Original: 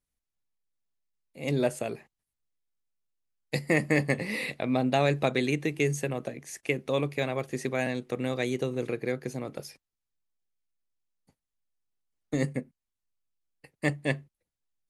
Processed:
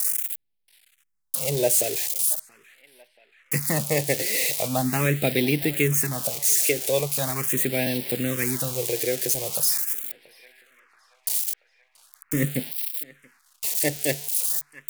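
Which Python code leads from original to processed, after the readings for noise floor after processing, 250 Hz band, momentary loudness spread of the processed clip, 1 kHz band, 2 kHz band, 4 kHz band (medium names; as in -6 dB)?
-68 dBFS, +2.0 dB, 9 LU, +1.0 dB, +2.5 dB, +9.5 dB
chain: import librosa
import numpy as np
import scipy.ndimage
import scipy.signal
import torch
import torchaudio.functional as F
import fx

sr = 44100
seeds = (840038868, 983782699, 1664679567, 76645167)

y = x + 0.5 * 10.0 ** (-20.0 / 20.0) * np.diff(np.sign(x), prepend=np.sign(x[:1]))
y = fx.echo_banded(y, sr, ms=680, feedback_pct=73, hz=1500.0, wet_db=-17.0)
y = fx.phaser_stages(y, sr, stages=4, low_hz=190.0, high_hz=1300.0, hz=0.41, feedback_pct=0)
y = y * 10.0 ** (5.5 / 20.0)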